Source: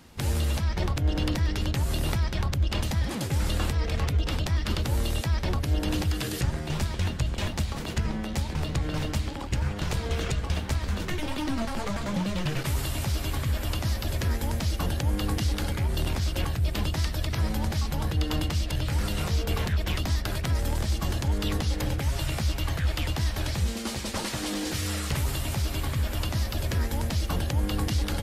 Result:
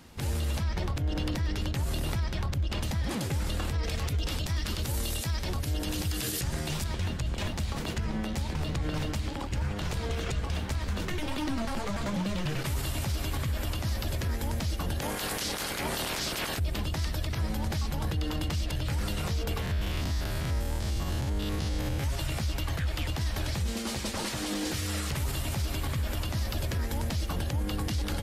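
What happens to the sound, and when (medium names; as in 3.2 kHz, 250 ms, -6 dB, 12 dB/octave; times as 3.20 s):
3.83–6.84 s: treble shelf 3.8 kHz +11 dB
15.01–16.58 s: spectral peaks clipped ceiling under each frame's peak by 27 dB
19.62–22.04 s: spectrogram pixelated in time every 100 ms
whole clip: peak limiter -22.5 dBFS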